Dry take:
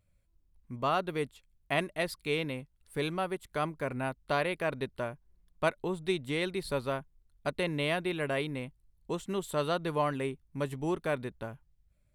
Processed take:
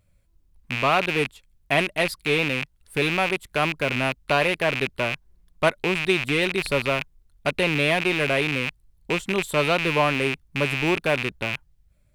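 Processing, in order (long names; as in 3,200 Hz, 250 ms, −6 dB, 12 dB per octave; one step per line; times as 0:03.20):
loose part that buzzes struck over −46 dBFS, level −22 dBFS
level +8 dB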